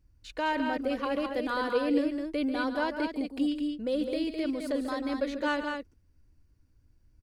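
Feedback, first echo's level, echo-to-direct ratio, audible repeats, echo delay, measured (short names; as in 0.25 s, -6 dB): no steady repeat, -11.0 dB, -4.5 dB, 2, 0.141 s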